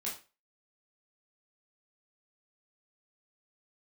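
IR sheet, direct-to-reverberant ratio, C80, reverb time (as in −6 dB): −6.0 dB, 13.5 dB, 0.30 s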